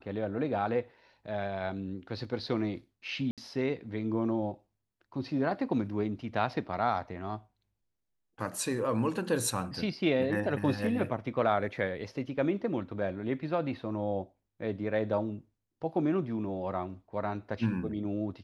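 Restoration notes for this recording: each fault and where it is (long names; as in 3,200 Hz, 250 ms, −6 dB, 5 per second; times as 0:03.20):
0:03.31–0:03.38: drop-out 67 ms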